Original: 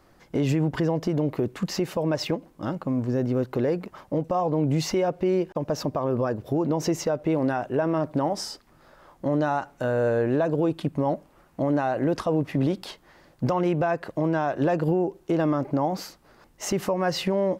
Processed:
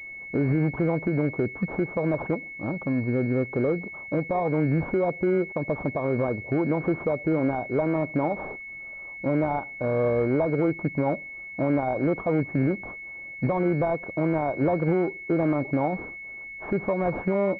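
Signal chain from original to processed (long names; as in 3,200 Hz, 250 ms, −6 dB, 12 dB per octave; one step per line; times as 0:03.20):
pitch vibrato 1.5 Hz 33 cents
switching amplifier with a slow clock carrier 2,200 Hz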